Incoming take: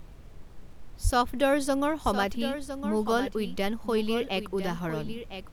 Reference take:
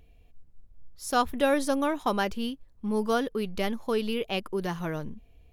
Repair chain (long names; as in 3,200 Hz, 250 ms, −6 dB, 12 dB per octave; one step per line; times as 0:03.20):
click removal
0:01.03–0:01.15: high-pass filter 140 Hz 24 dB per octave
noise reduction from a noise print 10 dB
echo removal 1,008 ms −10 dB